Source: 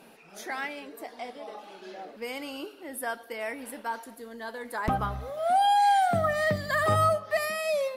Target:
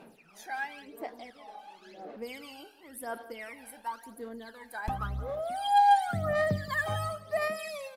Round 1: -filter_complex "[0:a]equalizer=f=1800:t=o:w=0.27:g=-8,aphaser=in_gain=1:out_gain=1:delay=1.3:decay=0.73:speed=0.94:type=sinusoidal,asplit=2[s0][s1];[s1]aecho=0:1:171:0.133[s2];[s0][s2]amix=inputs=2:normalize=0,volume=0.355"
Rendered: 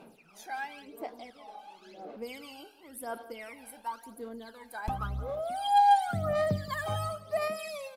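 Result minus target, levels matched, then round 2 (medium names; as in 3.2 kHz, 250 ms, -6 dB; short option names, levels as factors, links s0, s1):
2 kHz band -4.5 dB
-filter_complex "[0:a]aphaser=in_gain=1:out_gain=1:delay=1.3:decay=0.73:speed=0.94:type=sinusoidal,asplit=2[s0][s1];[s1]aecho=0:1:171:0.133[s2];[s0][s2]amix=inputs=2:normalize=0,volume=0.355"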